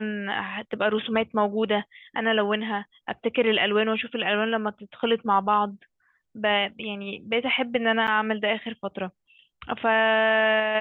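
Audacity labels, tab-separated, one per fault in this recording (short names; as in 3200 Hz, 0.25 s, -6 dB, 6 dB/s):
8.070000	8.080000	gap 8 ms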